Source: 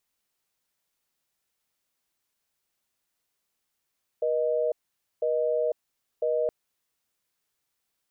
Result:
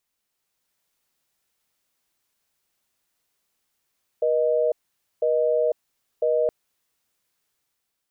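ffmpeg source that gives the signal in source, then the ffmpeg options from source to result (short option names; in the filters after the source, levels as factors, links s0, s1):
-f lavfi -i "aevalsrc='0.0531*(sin(2*PI*480*t)+sin(2*PI*620*t))*clip(min(mod(t,1),0.5-mod(t,1))/0.005,0,1)':d=2.27:s=44100"
-af "dynaudnorm=f=120:g=9:m=1.68"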